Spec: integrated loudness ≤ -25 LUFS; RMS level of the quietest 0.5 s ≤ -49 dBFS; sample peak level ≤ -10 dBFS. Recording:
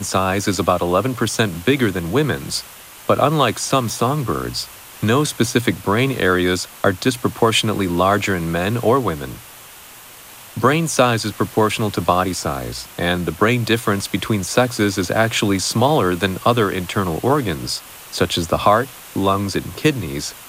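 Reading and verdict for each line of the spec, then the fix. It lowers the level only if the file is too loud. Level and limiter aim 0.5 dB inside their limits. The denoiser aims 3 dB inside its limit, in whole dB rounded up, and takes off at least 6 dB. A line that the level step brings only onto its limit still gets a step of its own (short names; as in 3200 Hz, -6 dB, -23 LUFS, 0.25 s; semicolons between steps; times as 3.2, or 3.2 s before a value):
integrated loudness -18.5 LUFS: fail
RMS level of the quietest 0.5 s -40 dBFS: fail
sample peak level -2.0 dBFS: fail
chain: denoiser 6 dB, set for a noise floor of -40 dBFS; gain -7 dB; limiter -10.5 dBFS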